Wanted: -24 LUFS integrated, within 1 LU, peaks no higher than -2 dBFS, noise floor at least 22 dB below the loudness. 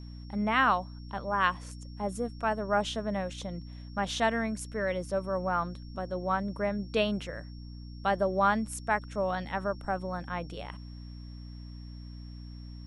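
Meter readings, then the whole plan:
hum 60 Hz; highest harmonic 300 Hz; hum level -41 dBFS; steady tone 5.5 kHz; tone level -57 dBFS; loudness -31.0 LUFS; peak level -11.5 dBFS; loudness target -24.0 LUFS
-> hum notches 60/120/180/240/300 Hz; band-stop 5.5 kHz, Q 30; trim +7 dB

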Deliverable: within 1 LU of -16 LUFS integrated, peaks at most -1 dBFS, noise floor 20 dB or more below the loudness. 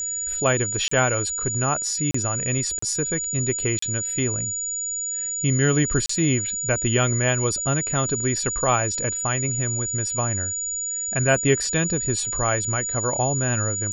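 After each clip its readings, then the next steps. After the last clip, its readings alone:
dropouts 5; longest dropout 34 ms; steady tone 6.9 kHz; tone level -25 dBFS; loudness -22.0 LUFS; peak level -6.0 dBFS; loudness target -16.0 LUFS
-> interpolate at 0.88/2.11/2.79/3.79/6.06 s, 34 ms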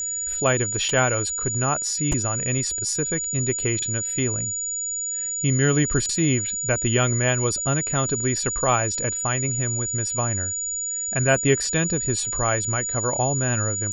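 dropouts 0; steady tone 6.9 kHz; tone level -25 dBFS
-> band-stop 6.9 kHz, Q 30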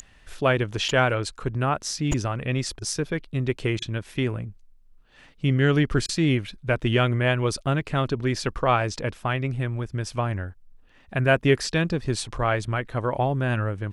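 steady tone not found; loudness -25.0 LUFS; peak level -6.5 dBFS; loudness target -16.0 LUFS
-> trim +9 dB; peak limiter -1 dBFS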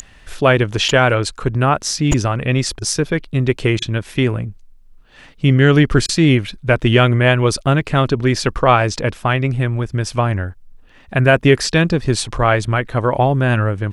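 loudness -16.5 LUFS; peak level -1.0 dBFS; noise floor -45 dBFS

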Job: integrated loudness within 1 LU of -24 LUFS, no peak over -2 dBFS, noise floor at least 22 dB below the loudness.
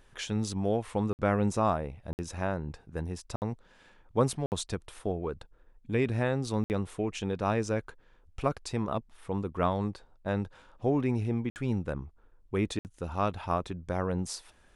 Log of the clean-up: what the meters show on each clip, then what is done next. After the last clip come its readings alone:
dropouts 7; longest dropout 59 ms; loudness -32.5 LUFS; peak level -12.5 dBFS; loudness target -24.0 LUFS
-> interpolate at 1.13/2.13/3.36/4.46/6.64/11.50/12.79 s, 59 ms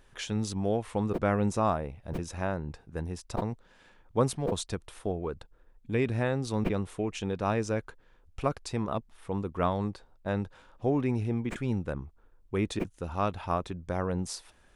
dropouts 0; loudness -32.0 LUFS; peak level -12.5 dBFS; loudness target -24.0 LUFS
-> trim +8 dB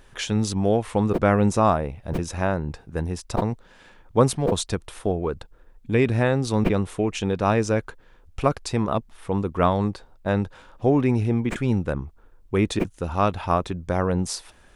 loudness -24.0 LUFS; peak level -4.5 dBFS; noise floor -53 dBFS

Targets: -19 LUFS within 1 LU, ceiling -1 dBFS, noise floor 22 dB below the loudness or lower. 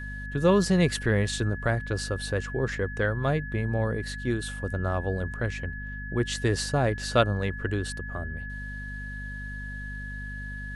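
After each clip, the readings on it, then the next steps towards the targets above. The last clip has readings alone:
hum 50 Hz; highest harmonic 250 Hz; hum level -35 dBFS; steady tone 1.7 kHz; tone level -38 dBFS; loudness -28.5 LUFS; peak level -7.5 dBFS; loudness target -19.0 LUFS
-> hum notches 50/100/150/200/250 Hz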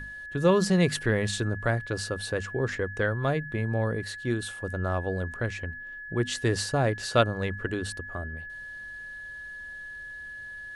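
hum not found; steady tone 1.7 kHz; tone level -38 dBFS
-> band-stop 1.7 kHz, Q 30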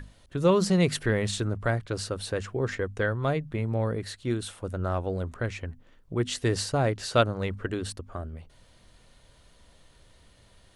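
steady tone not found; loudness -28.5 LUFS; peak level -8.0 dBFS; loudness target -19.0 LUFS
-> trim +9.5 dB; peak limiter -1 dBFS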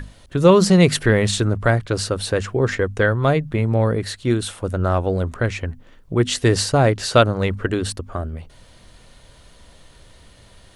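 loudness -19.0 LUFS; peak level -1.0 dBFS; noise floor -49 dBFS

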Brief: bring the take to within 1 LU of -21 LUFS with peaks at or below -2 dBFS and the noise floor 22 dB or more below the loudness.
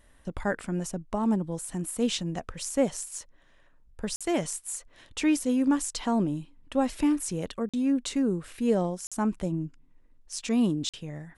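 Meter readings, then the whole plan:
dropouts 4; longest dropout 46 ms; loudness -29.0 LUFS; peak level -12.0 dBFS; loudness target -21.0 LUFS
-> interpolate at 4.16/7.69/9.07/10.89 s, 46 ms; trim +8 dB

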